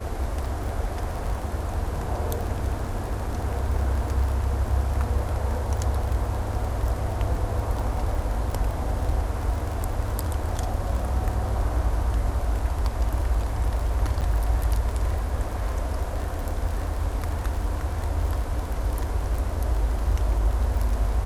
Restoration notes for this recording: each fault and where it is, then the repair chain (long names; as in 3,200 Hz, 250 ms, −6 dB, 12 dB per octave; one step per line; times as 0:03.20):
surface crackle 23 per second −29 dBFS
0:14.21–0:14.22: drop-out 7.6 ms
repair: click removal
repair the gap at 0:14.21, 7.6 ms